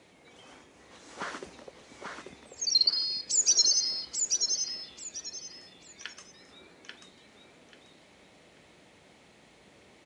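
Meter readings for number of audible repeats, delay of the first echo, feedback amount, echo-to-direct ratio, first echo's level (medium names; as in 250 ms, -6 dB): 3, 838 ms, 25%, -4.0 dB, -4.5 dB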